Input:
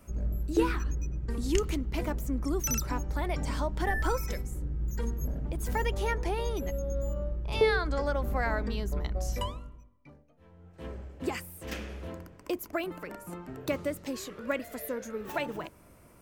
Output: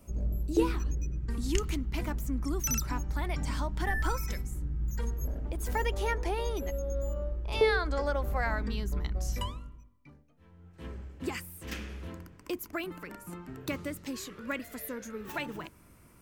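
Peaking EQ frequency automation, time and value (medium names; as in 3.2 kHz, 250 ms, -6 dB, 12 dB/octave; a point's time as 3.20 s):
peaking EQ -8.5 dB 0.99 oct
0.86 s 1.6 kHz
1.32 s 510 Hz
4.83 s 510 Hz
5.35 s 150 Hz
8.16 s 150 Hz
8.64 s 600 Hz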